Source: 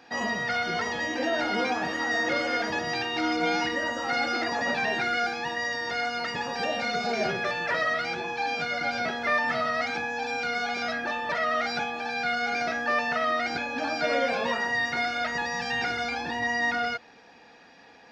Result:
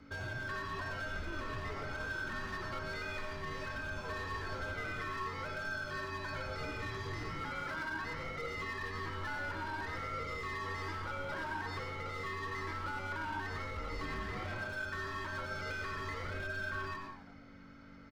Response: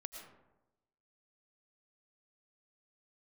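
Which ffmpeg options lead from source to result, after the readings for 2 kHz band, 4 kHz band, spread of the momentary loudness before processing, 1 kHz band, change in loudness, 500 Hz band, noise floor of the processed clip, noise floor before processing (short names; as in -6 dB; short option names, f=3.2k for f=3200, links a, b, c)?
-12.0 dB, -15.5 dB, 4 LU, -12.5 dB, -12.5 dB, -14.0 dB, -54 dBFS, -53 dBFS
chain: -filter_complex "[0:a]equalizer=f=125:t=o:w=1:g=-4,equalizer=f=250:t=o:w=1:g=10,equalizer=f=500:t=o:w=1:g=-9,equalizer=f=2k:t=o:w=1:g=3,equalizer=f=4k:t=o:w=1:g=-6,acompressor=threshold=-29dB:ratio=6,asoftclip=type=hard:threshold=-29dB,aeval=exprs='val(0)+0.00398*(sin(2*PI*50*n/s)+sin(2*PI*2*50*n/s)/2+sin(2*PI*3*50*n/s)/3+sin(2*PI*4*50*n/s)/4+sin(2*PI*5*50*n/s)/5)':c=same,afreqshift=-330,asplit=7[a][b][c][d][e][f][g];[b]adelay=87,afreqshift=-97,volume=-11.5dB[h];[c]adelay=174,afreqshift=-194,volume=-16.7dB[i];[d]adelay=261,afreqshift=-291,volume=-21.9dB[j];[e]adelay=348,afreqshift=-388,volume=-27.1dB[k];[f]adelay=435,afreqshift=-485,volume=-32.3dB[l];[g]adelay=522,afreqshift=-582,volume=-37.5dB[m];[a][h][i][j][k][l][m]amix=inputs=7:normalize=0[n];[1:a]atrim=start_sample=2205,afade=t=out:st=0.24:d=0.01,atrim=end_sample=11025[o];[n][o]afir=irnorm=-1:irlink=0,volume=-3dB"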